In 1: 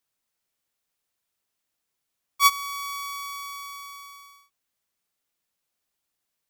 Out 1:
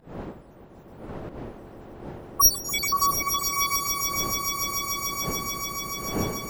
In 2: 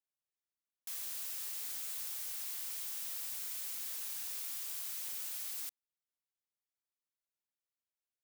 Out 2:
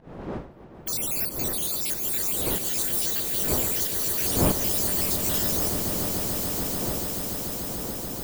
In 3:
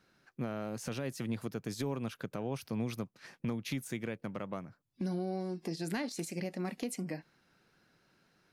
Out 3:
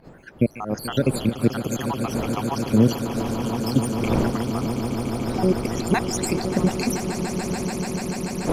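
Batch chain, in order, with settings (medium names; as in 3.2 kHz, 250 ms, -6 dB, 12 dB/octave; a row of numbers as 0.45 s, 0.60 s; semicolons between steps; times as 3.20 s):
random holes in the spectrogram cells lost 75%; wind noise 460 Hz -54 dBFS; dynamic bell 1.8 kHz, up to -6 dB, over -59 dBFS, Q 2.2; volume shaper 93 bpm, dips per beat 1, -18 dB, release 164 ms; echo with a slow build-up 145 ms, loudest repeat 8, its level -12 dB; normalise loudness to -24 LUFS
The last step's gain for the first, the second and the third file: +15.0 dB, +19.0 dB, +19.5 dB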